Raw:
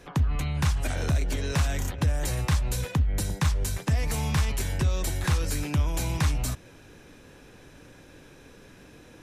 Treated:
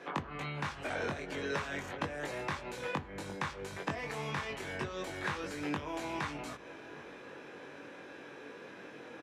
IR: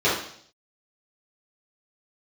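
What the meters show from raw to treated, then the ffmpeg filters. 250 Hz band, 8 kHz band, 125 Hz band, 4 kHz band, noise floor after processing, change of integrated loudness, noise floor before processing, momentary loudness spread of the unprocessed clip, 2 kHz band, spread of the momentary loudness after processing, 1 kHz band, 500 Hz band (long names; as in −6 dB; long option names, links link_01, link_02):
−8.0 dB, −17.0 dB, −19.0 dB, −8.5 dB, −50 dBFS, −12.0 dB, −51 dBFS, 2 LU, −2.0 dB, 12 LU, −2.0 dB, −2.0 dB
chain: -filter_complex "[0:a]aemphasis=mode=production:type=50fm,asplit=2[link_01][link_02];[link_02]alimiter=limit=-20.5dB:level=0:latency=1,volume=0dB[link_03];[link_01][link_03]amix=inputs=2:normalize=0,acompressor=threshold=-25dB:ratio=3,highpass=310,lowpass=2200,asplit=2[link_04][link_05];[link_05]adelay=21,volume=-3dB[link_06];[link_04][link_06]amix=inputs=2:normalize=0,asplit=2[link_07][link_08];[link_08]adelay=758,volume=-18dB,highshelf=frequency=4000:gain=-17.1[link_09];[link_07][link_09]amix=inputs=2:normalize=0,asplit=2[link_10][link_11];[1:a]atrim=start_sample=2205[link_12];[link_11][link_12]afir=irnorm=-1:irlink=0,volume=-33.5dB[link_13];[link_10][link_13]amix=inputs=2:normalize=0,volume=-2.5dB"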